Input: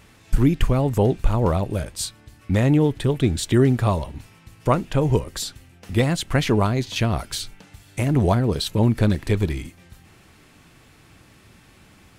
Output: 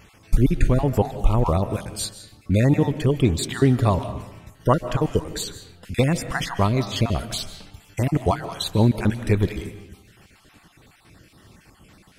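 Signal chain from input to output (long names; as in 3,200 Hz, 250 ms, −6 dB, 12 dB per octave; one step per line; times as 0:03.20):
time-frequency cells dropped at random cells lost 32%
comb and all-pass reverb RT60 0.92 s, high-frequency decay 0.6×, pre-delay 110 ms, DRR 11.5 dB
level +1 dB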